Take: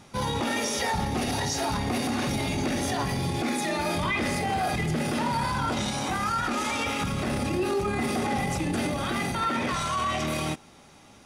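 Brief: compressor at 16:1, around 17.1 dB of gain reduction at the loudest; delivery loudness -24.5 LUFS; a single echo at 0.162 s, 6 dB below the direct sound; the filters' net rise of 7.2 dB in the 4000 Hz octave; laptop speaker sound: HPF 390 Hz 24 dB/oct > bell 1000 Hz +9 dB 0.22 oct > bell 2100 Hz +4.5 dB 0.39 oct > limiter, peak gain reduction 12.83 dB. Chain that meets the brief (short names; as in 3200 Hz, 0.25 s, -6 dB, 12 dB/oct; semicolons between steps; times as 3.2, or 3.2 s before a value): bell 4000 Hz +8.5 dB; compressor 16:1, threshold -40 dBFS; HPF 390 Hz 24 dB/oct; bell 1000 Hz +9 dB 0.22 oct; bell 2100 Hz +4.5 dB 0.39 oct; echo 0.162 s -6 dB; gain +22 dB; limiter -17 dBFS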